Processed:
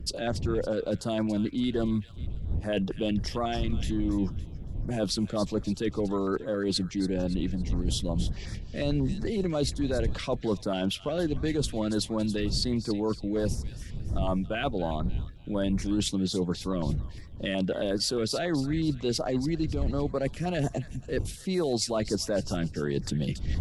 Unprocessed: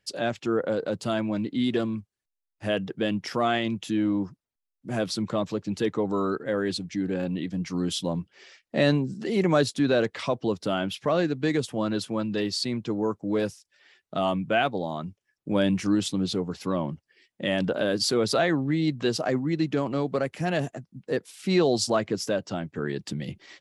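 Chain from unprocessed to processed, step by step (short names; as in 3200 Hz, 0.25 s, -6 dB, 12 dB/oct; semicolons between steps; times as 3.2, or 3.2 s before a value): wind noise 88 Hz -32 dBFS; reverse; compressor 6:1, threshold -33 dBFS, peak gain reduction 18 dB; reverse; thin delay 0.281 s, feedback 38%, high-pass 1900 Hz, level -10 dB; stepped notch 11 Hz 860–2900 Hz; gain +8 dB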